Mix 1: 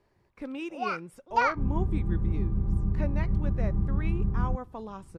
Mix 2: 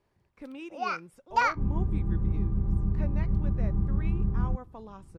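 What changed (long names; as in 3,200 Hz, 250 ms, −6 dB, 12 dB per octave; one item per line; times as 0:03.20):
speech −5.5 dB
first sound: remove high-frequency loss of the air 70 metres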